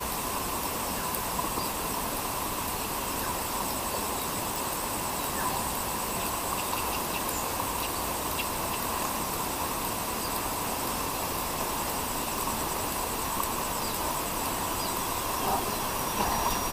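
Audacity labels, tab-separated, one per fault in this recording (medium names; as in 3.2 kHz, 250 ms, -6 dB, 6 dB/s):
4.560000	4.560000	pop
12.380000	12.380000	pop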